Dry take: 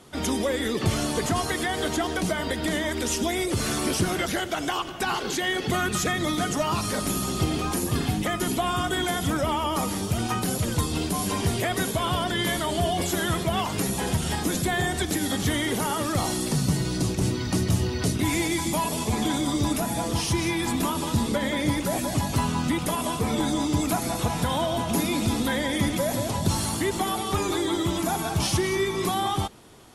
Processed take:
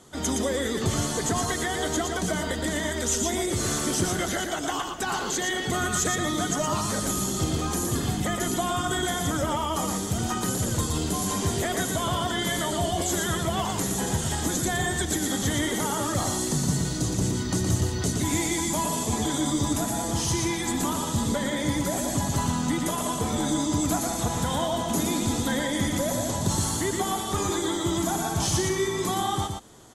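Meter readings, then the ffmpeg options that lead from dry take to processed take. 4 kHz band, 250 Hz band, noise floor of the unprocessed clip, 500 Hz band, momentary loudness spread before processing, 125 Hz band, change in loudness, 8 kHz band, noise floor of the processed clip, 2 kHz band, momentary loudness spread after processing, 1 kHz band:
-1.5 dB, -1.0 dB, -31 dBFS, -1.0 dB, 2 LU, -1.0 dB, -0.5 dB, +3.5 dB, -30 dBFS, -2.0 dB, 2 LU, -1.0 dB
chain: -af "superequalizer=12b=0.562:15b=2.24,acontrast=44,aecho=1:1:117:0.596,volume=-8dB"

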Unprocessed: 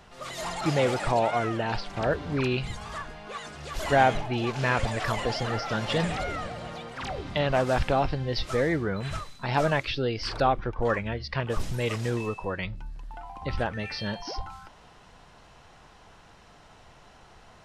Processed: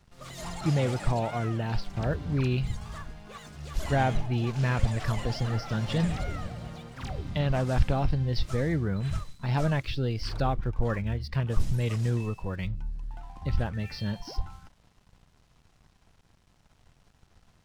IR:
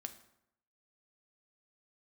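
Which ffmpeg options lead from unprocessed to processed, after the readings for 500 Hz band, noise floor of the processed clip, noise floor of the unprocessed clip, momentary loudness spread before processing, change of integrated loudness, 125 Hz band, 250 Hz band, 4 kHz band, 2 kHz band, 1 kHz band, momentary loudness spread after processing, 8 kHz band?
-6.5 dB, -64 dBFS, -54 dBFS, 13 LU, -1.5 dB, +4.5 dB, 0.0 dB, -5.5 dB, -7.0 dB, -7.0 dB, 13 LU, -3.5 dB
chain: -af "aeval=exprs='sgn(val(0))*max(abs(val(0))-0.00237,0)':c=same,bass=f=250:g=13,treble=f=4k:g=4,volume=-7dB"

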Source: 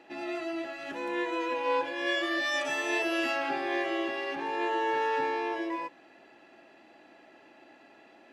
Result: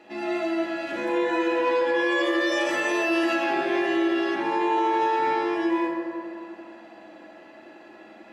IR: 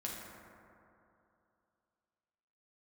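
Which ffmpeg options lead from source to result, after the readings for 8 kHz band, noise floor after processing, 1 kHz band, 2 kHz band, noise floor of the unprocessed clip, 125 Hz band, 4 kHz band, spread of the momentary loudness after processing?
+3.5 dB, -48 dBFS, +6.0 dB, +4.5 dB, -57 dBFS, n/a, +2.5 dB, 8 LU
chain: -filter_complex "[1:a]atrim=start_sample=2205[a];[0:a][a]afir=irnorm=-1:irlink=0,alimiter=limit=-22dB:level=0:latency=1:release=49,volume=7dB"

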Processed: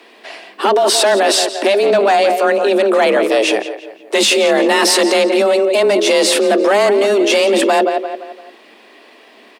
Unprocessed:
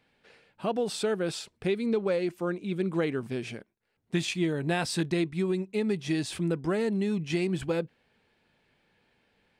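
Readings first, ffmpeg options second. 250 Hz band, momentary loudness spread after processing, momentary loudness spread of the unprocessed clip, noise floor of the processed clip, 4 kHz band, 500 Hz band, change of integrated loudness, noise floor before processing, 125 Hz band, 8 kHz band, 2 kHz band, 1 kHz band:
+10.0 dB, 7 LU, 6 LU, -45 dBFS, +22.0 dB, +19.0 dB, +17.0 dB, -74 dBFS, n/a, +22.0 dB, +19.0 dB, +24.0 dB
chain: -filter_complex "[0:a]asplit=2[a][b];[b]adelay=172,lowpass=f=4.4k:p=1,volume=-13.5dB,asplit=2[c][d];[d]adelay=172,lowpass=f=4.4k:p=1,volume=0.43,asplit=2[e][f];[f]adelay=172,lowpass=f=4.4k:p=1,volume=0.43,asplit=2[g][h];[h]adelay=172,lowpass=f=4.4k:p=1,volume=0.43[i];[a][c][e][g][i]amix=inputs=5:normalize=0,apsyclip=33.5dB,afreqshift=200,volume=-8.5dB"

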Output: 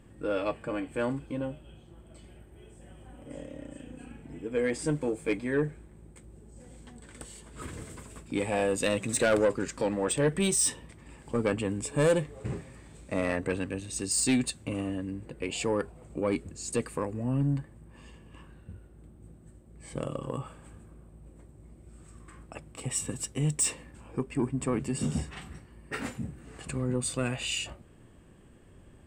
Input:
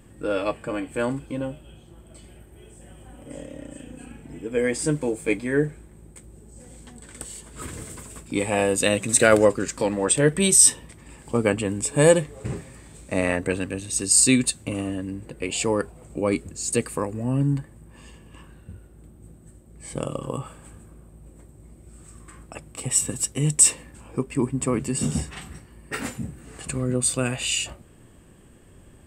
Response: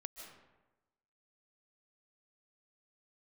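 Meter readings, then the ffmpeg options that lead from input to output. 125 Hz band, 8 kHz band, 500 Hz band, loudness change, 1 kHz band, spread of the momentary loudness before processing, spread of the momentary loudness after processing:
-5.5 dB, -11.5 dB, -6.5 dB, -8.0 dB, -6.0 dB, 21 LU, 20 LU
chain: -af "highshelf=f=6.8k:g=-10.5,asoftclip=type=tanh:threshold=-14dB,volume=-4dB"

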